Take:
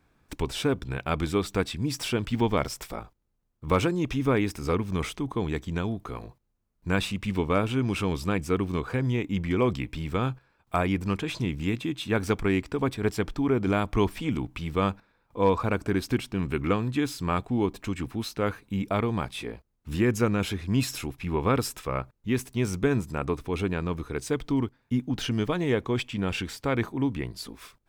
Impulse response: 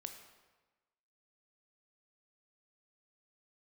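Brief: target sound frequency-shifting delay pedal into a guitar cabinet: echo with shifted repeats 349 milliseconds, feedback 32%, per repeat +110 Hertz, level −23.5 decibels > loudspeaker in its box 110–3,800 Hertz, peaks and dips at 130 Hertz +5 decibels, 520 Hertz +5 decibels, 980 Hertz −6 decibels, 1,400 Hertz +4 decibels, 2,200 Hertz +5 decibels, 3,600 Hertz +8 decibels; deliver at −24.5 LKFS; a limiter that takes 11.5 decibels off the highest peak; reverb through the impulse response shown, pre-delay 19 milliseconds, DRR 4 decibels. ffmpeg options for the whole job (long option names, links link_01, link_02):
-filter_complex "[0:a]alimiter=limit=-22.5dB:level=0:latency=1,asplit=2[link_01][link_02];[1:a]atrim=start_sample=2205,adelay=19[link_03];[link_02][link_03]afir=irnorm=-1:irlink=0,volume=-0.5dB[link_04];[link_01][link_04]amix=inputs=2:normalize=0,asplit=3[link_05][link_06][link_07];[link_06]adelay=349,afreqshift=110,volume=-23.5dB[link_08];[link_07]adelay=698,afreqshift=220,volume=-33.4dB[link_09];[link_05][link_08][link_09]amix=inputs=3:normalize=0,highpass=110,equalizer=frequency=130:width_type=q:width=4:gain=5,equalizer=frequency=520:width_type=q:width=4:gain=5,equalizer=frequency=980:width_type=q:width=4:gain=-6,equalizer=frequency=1400:width_type=q:width=4:gain=4,equalizer=frequency=2200:width_type=q:width=4:gain=5,equalizer=frequency=3600:width_type=q:width=4:gain=8,lowpass=frequency=3800:width=0.5412,lowpass=frequency=3800:width=1.3066,volume=6.5dB"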